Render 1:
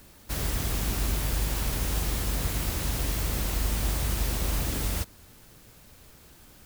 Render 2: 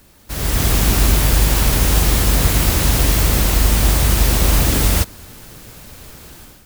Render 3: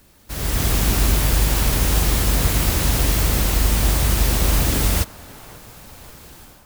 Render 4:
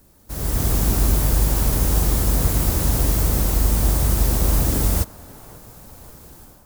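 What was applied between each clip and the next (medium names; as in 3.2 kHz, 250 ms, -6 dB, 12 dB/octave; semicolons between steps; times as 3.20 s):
level rider gain up to 12 dB; trim +2.5 dB
band-passed feedback delay 538 ms, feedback 63%, band-pass 930 Hz, level -17 dB; trim -3.5 dB
peaking EQ 2.7 kHz -10 dB 2 oct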